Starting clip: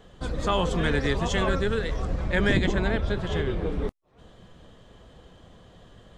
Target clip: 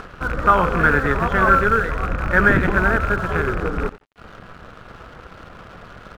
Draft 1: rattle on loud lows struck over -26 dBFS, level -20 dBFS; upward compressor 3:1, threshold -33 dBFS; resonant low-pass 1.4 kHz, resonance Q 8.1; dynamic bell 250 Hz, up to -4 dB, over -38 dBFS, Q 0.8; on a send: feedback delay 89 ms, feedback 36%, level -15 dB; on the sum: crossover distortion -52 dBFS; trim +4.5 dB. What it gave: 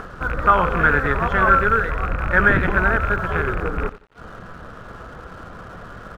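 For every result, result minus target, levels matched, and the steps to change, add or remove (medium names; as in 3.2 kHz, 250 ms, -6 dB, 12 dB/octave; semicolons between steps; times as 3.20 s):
crossover distortion: distortion -7 dB; 250 Hz band -2.5 dB
change: crossover distortion -44 dBFS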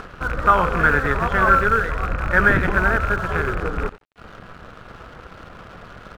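250 Hz band -2.5 dB
remove: dynamic bell 250 Hz, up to -4 dB, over -38 dBFS, Q 0.8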